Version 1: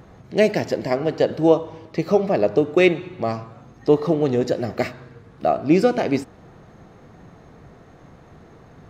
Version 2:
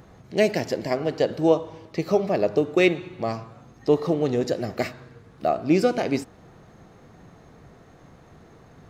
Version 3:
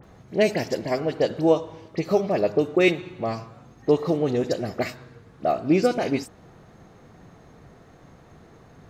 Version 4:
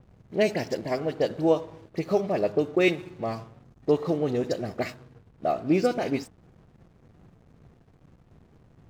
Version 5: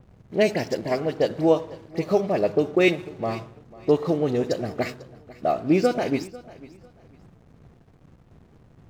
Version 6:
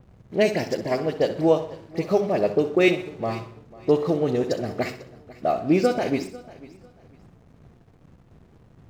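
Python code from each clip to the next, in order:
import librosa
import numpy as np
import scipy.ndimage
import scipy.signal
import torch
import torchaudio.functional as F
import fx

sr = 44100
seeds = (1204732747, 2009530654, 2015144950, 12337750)

y1 = fx.high_shelf(x, sr, hz=4300.0, db=6.0)
y1 = y1 * 10.0 ** (-3.5 / 20.0)
y2 = fx.dispersion(y1, sr, late='highs', ms=41.0, hz=2900.0)
y3 = fx.backlash(y2, sr, play_db=-42.5)
y3 = y3 * 10.0 ** (-3.0 / 20.0)
y4 = fx.echo_feedback(y3, sr, ms=496, feedback_pct=25, wet_db=-20)
y4 = y4 * 10.0 ** (3.0 / 20.0)
y5 = fx.echo_feedback(y4, sr, ms=63, feedback_pct=41, wet_db=-12.5)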